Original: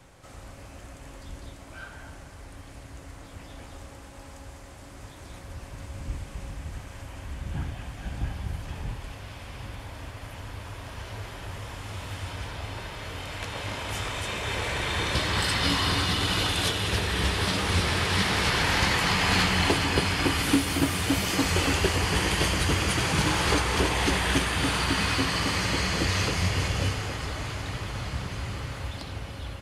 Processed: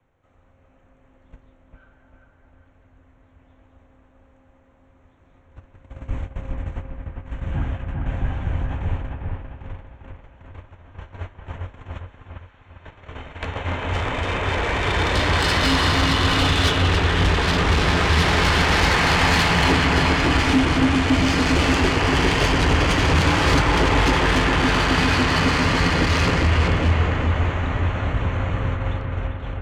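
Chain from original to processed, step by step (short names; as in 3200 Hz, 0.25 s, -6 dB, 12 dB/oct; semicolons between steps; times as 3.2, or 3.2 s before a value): Wiener smoothing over 9 samples; 11.97–12.8 HPF 1100 Hz; gate -35 dBFS, range -22 dB; LPF 7300 Hz 24 dB/oct; soft clip -23 dBFS, distortion -12 dB; frequency shift -14 Hz; dark delay 0.4 s, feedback 44%, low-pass 2500 Hz, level -3 dB; on a send at -13 dB: reverb, pre-delay 5 ms; on the sum: gain +8.5 dB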